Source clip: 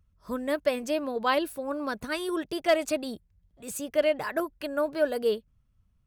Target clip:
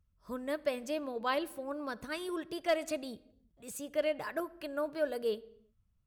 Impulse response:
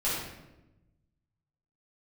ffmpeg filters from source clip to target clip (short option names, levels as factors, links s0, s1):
-filter_complex "[0:a]asplit=2[s0][s1];[s1]lowpass=12000[s2];[1:a]atrim=start_sample=2205,afade=t=out:st=0.41:d=0.01,atrim=end_sample=18522[s3];[s2][s3]afir=irnorm=-1:irlink=0,volume=0.0447[s4];[s0][s4]amix=inputs=2:normalize=0,volume=0.422"